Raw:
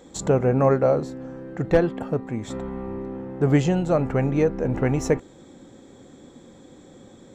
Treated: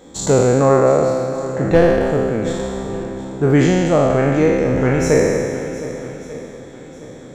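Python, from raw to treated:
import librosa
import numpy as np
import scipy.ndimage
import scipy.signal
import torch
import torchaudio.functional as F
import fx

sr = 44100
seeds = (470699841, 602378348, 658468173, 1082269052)

y = fx.spec_trails(x, sr, decay_s=2.05)
y = fx.echo_swing(y, sr, ms=1191, ratio=1.5, feedback_pct=31, wet_db=-14.5)
y = y * 10.0 ** (3.0 / 20.0)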